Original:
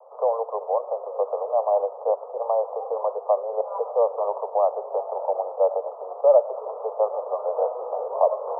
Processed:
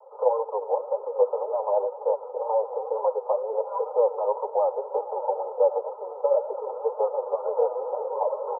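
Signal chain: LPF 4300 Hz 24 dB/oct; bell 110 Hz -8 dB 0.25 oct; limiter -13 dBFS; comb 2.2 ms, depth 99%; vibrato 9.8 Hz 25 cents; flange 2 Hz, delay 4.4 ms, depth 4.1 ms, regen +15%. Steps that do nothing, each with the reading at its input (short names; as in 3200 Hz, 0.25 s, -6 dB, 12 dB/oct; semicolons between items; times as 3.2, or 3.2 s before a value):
LPF 4300 Hz: input band ends at 1300 Hz; bell 110 Hz: input band starts at 380 Hz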